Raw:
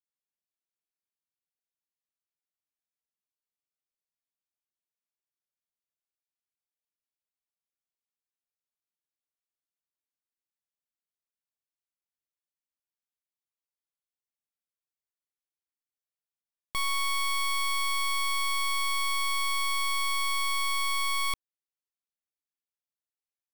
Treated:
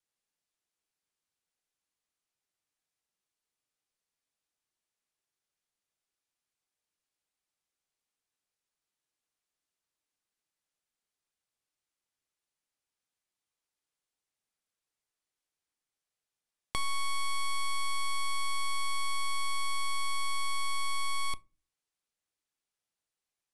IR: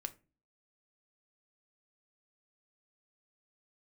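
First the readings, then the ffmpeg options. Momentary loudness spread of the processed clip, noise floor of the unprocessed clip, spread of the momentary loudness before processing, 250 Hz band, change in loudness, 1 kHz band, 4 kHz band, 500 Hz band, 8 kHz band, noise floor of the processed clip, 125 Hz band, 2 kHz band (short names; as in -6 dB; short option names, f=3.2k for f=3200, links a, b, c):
1 LU, under -85 dBFS, 2 LU, -1.5 dB, -5.5 dB, -4.0 dB, -6.0 dB, -2.0 dB, -4.5 dB, under -85 dBFS, n/a, -7.0 dB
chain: -filter_complex "[0:a]lowpass=f=11k:w=0.5412,lowpass=f=11k:w=1.3066,acrossover=split=1100|5300[a][b][c];[a]acompressor=threshold=-42dB:ratio=4[d];[b]acompressor=threshold=-46dB:ratio=4[e];[c]acompressor=threshold=-50dB:ratio=4[f];[d][e][f]amix=inputs=3:normalize=0,asplit=2[g][h];[1:a]atrim=start_sample=2205[i];[h][i]afir=irnorm=-1:irlink=0,volume=-2dB[j];[g][j]amix=inputs=2:normalize=0,volume=2.5dB"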